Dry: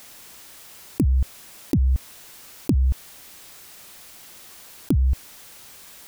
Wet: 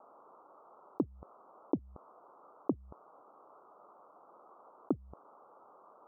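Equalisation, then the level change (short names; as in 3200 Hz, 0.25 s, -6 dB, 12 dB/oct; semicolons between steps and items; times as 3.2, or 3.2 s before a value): Butterworth band-pass 890 Hz, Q 0.58; steep low-pass 1300 Hz 96 dB/oct; 0.0 dB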